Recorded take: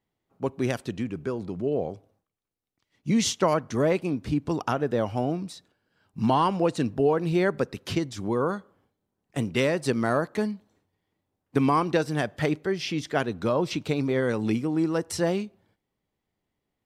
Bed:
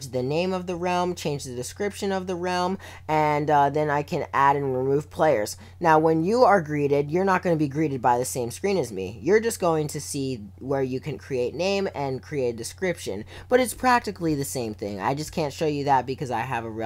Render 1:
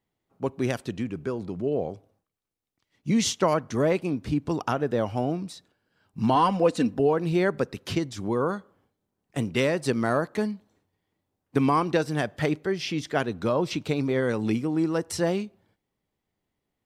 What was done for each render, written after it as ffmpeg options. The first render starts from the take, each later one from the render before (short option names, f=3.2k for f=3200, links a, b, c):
-filter_complex "[0:a]asettb=1/sr,asplit=3[a][b][c];[a]atrim=end=6.354[d];[b]atrim=start=6.35:end=6.99,asetpts=PTS-STARTPTS,afade=t=in:d=0.004:c=qsin,afade=t=out:st=0.636:d=0.004:c=qsin,aecho=1:1:4:0.65,atrim=end_sample=28224[e];[c]atrim=start=6.986[f];[d][e]acrossfade=d=0.004:c1=hsin:c2=qsin[g];[g][f]acrossfade=d=0.004:c1=qsin:c2=hsin"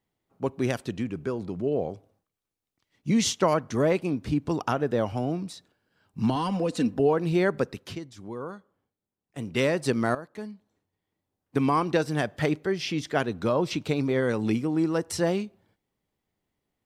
-filter_complex "[0:a]asettb=1/sr,asplit=3[a][b][c];[a]atrim=end=5.124[d];[b]atrim=start=5.12:end=6.96,asetpts=PTS-STARTPTS,afade=t=in:d=0.004:c=qsin,afade=t=out:st=1.836:d=0.004:c=qsin,acrossover=split=310|3000[e][f][g];[f]acompressor=threshold=-27dB:ratio=6:attack=3.2:release=140:knee=2.83:detection=peak[h];[e][h][g]amix=inputs=3:normalize=0[i];[c]atrim=start=6.956[j];[d][i]acrossfade=d=0.004:c1=hsin:c2=qsin[k];[k][j]acrossfade=d=0.004:c1=qsin:c2=hsin,asplit=4[l][m][n][o];[l]atrim=end=7.97,asetpts=PTS-STARTPTS,afade=t=out:st=7.68:d=0.29:silence=0.298538[p];[m]atrim=start=7.97:end=9.35,asetpts=PTS-STARTPTS,volume=-10.5dB[q];[n]atrim=start=9.35:end=10.15,asetpts=PTS-STARTPTS,afade=t=in:d=0.29:silence=0.298538,afade=t=out:st=0.796:d=0.004:c=hsin:silence=0.177828[r];[o]atrim=start=10.15,asetpts=PTS-STARTPTS,afade=t=in:d=1.9:silence=0.177828[s];[p][q][r][s]concat=n=4:v=0:a=1"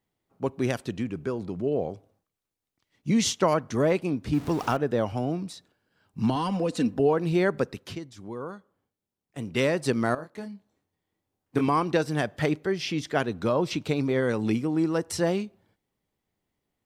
-filter_complex "[0:a]asettb=1/sr,asplit=3[a][b][c];[a]atrim=end=4.334[d];[b]atrim=start=4.33:end=4.77,asetpts=PTS-STARTPTS,afade=t=in:d=0.004:c=qsin,afade=t=out:st=0.436:d=0.004:c=qsin,aeval=exprs='val(0)+0.5*0.0168*sgn(val(0))':c=same[e];[c]atrim=start=4.766[f];[d][e]acrossfade=d=0.004:c1=hsin:c2=qsin[g];[g][f]acrossfade=d=0.004:c1=qsin:c2=hsin,asettb=1/sr,asplit=3[h][i][j];[h]atrim=end=10.154[k];[i]atrim=start=10.15:end=11.68,asetpts=PTS-STARTPTS,afade=t=in:d=0.004:c=qsin,afade=t=out:st=1.526:d=0.004:c=qsin,asplit=2[l][m];[m]adelay=25,volume=-5.5dB[n];[l][n]amix=inputs=2:normalize=0,atrim=end_sample=67473[o];[j]atrim=start=11.676[p];[k][o]acrossfade=d=0.004:c1=hsin:c2=qsin[q];[q][p]acrossfade=d=0.004:c1=qsin:c2=hsin"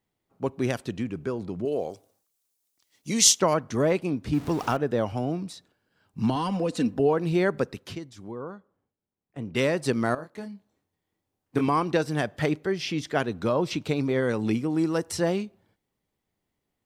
-filter_complex "[0:a]asettb=1/sr,asplit=3[a][b][c];[a]atrim=end=1.654[d];[b]atrim=start=1.65:end=3.4,asetpts=PTS-STARTPTS,afade=t=in:d=0.004:c=qsin,afade=t=out:st=1.746:d=0.004:c=qsin,bass=f=250:g=-9,treble=f=4k:g=14[e];[c]atrim=start=3.396[f];[d][e]acrossfade=d=0.004:c1=hsin:c2=qsin[g];[g][f]acrossfade=d=0.004:c1=qsin:c2=hsin,asettb=1/sr,asplit=3[h][i][j];[h]atrim=end=8.314[k];[i]atrim=start=8.31:end=9.55,asetpts=PTS-STARTPTS,afade=t=in:d=0.004:c=qsin,afade=t=out:st=1.236:d=0.004:c=qsin,lowpass=f=1.5k:p=1[l];[j]atrim=start=9.546[m];[k][l]acrossfade=d=0.004:c1=hsin:c2=qsin[n];[n][m]acrossfade=d=0.004:c1=qsin:c2=hsin,asettb=1/sr,asplit=3[o][p][q];[o]atrim=end=14.704[r];[p]atrim=start=14.7:end=15.1,asetpts=PTS-STARTPTS,afade=t=in:d=0.004:c=qsin,afade=t=out:st=0.396:d=0.004:c=qsin,highshelf=f=4.7k:g=6.5[s];[q]atrim=start=15.096[t];[r][s]acrossfade=d=0.004:c1=hsin:c2=qsin[u];[u][t]acrossfade=d=0.004:c1=qsin:c2=hsin"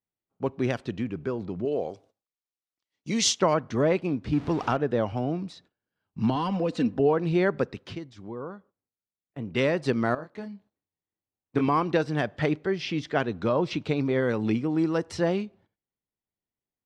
-af "lowpass=4.3k,agate=range=-15dB:threshold=-56dB:ratio=16:detection=peak"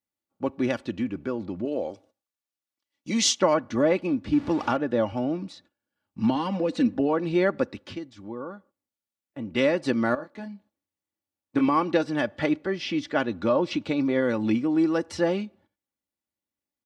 -af "highpass=67,aecho=1:1:3.5:0.59"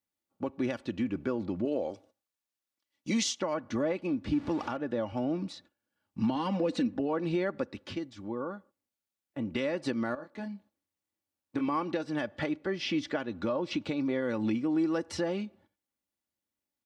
-af "acompressor=threshold=-27dB:ratio=2,alimiter=limit=-20.5dB:level=0:latency=1:release=433"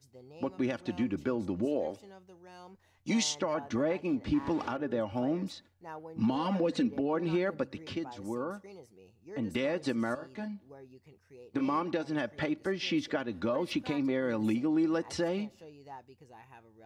-filter_complex "[1:a]volume=-26.5dB[a];[0:a][a]amix=inputs=2:normalize=0"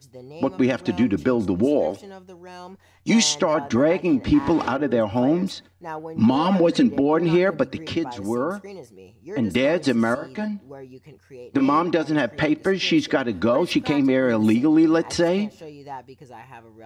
-af "volume=11.5dB"